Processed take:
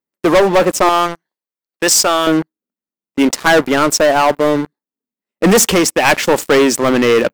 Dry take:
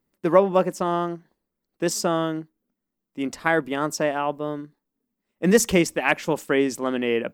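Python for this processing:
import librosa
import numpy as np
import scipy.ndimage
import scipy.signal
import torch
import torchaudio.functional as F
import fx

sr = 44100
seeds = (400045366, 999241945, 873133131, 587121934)

y = fx.highpass(x, sr, hz=fx.steps((0.0, 400.0), (0.89, 1500.0), (2.27, 260.0)), slope=6)
y = fx.leveller(y, sr, passes=5)
y = fx.rider(y, sr, range_db=10, speed_s=0.5)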